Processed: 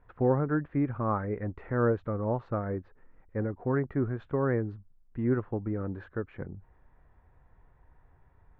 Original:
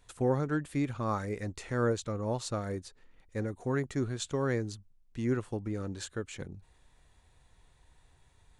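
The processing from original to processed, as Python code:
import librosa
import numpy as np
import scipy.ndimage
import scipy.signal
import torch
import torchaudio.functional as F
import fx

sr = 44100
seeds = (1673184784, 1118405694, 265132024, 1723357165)

y = scipy.signal.sosfilt(scipy.signal.butter(4, 1700.0, 'lowpass', fs=sr, output='sos'), x)
y = F.gain(torch.from_numpy(y), 3.0).numpy()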